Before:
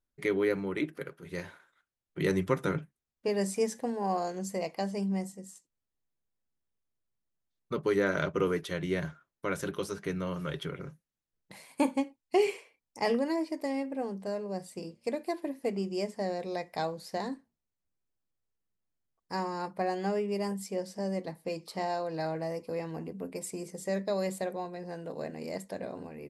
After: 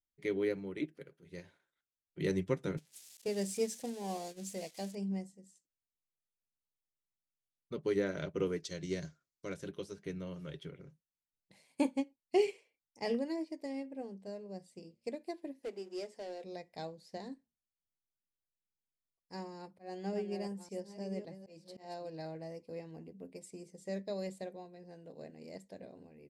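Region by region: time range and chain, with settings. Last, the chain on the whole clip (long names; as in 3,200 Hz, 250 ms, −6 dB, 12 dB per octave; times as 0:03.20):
0:02.77–0:04.95: spike at every zero crossing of −26.5 dBFS + noise gate −38 dBFS, range −9 dB
0:08.60–0:09.54: flat-topped bell 5,800 Hz +12.5 dB 1.1 octaves + notch filter 860 Hz, Q 10 + hard clipping −21.5 dBFS
0:15.63–0:16.44: mu-law and A-law mismatch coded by mu + high-pass filter 300 Hz 24 dB per octave + hard clipping −28 dBFS
0:19.57–0:22.10: delay that plays each chunk backwards 560 ms, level −8 dB + volume swells 145 ms
whole clip: low-pass filter 8,400 Hz 12 dB per octave; parametric band 1,200 Hz −10 dB 1.2 octaves; expander for the loud parts 1.5 to 1, over −43 dBFS; level −1.5 dB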